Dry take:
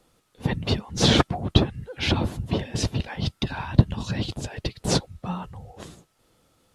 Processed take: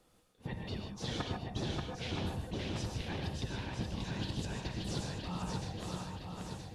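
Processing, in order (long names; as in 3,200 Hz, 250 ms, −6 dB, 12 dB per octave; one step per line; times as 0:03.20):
reversed playback
downward compressor 6 to 1, threshold −32 dBFS, peak gain reduction 22 dB
reversed playback
feedback echo with a long and a short gap by turns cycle 972 ms, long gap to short 1.5 to 1, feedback 49%, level −3.5 dB
reverb whose tail is shaped and stops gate 170 ms rising, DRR 3 dB
level −6 dB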